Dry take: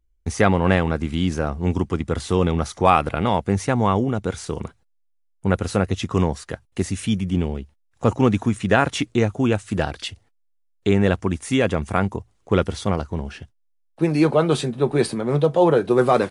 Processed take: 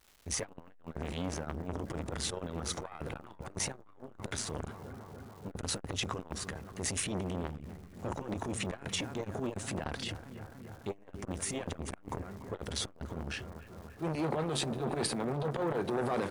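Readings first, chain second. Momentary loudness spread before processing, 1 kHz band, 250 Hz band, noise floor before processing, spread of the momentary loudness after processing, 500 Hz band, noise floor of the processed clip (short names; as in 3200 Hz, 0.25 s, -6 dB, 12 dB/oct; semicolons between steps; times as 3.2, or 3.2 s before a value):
11 LU, -17.5 dB, -17.5 dB, -65 dBFS, 13 LU, -17.5 dB, -55 dBFS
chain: transient shaper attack -9 dB, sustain +10 dB; compressor 6:1, threshold -20 dBFS, peak gain reduction 10.5 dB; crackle 530/s -42 dBFS; analogue delay 0.29 s, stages 4096, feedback 75%, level -15.5 dB; core saturation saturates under 1300 Hz; gain -6.5 dB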